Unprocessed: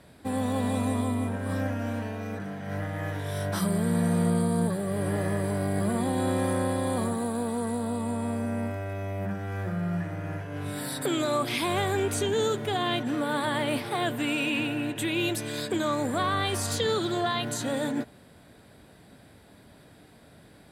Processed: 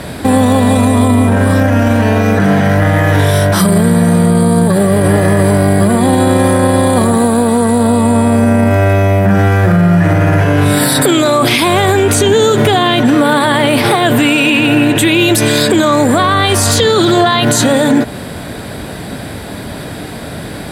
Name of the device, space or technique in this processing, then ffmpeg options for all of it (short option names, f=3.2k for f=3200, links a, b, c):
loud club master: -af "acompressor=threshold=-32dB:ratio=2,asoftclip=type=hard:threshold=-22dB,alimiter=level_in=30dB:limit=-1dB:release=50:level=0:latency=1,volume=-1dB"